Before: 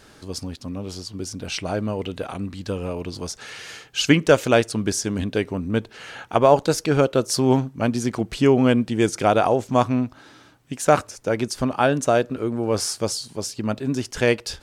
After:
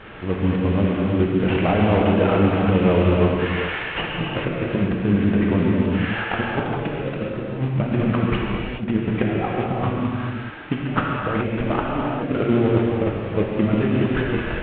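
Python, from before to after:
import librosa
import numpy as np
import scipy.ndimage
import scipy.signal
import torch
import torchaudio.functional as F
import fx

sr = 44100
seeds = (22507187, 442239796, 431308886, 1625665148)

y = fx.cvsd(x, sr, bps=16000)
y = fx.over_compress(y, sr, threshold_db=-27.0, ratio=-0.5)
y = fx.rev_gated(y, sr, seeds[0], gate_ms=450, shape='flat', drr_db=-3.0)
y = F.gain(torch.from_numpy(y), 4.0).numpy()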